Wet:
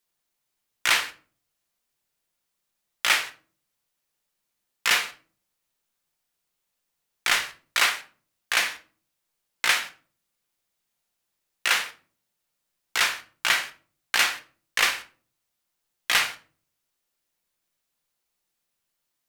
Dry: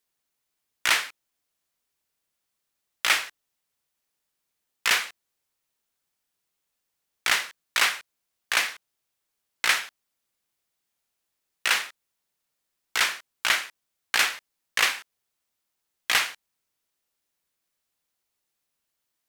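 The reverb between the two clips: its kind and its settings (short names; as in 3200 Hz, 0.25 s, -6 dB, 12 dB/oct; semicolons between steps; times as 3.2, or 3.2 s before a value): shoebox room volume 300 m³, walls furnished, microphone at 0.86 m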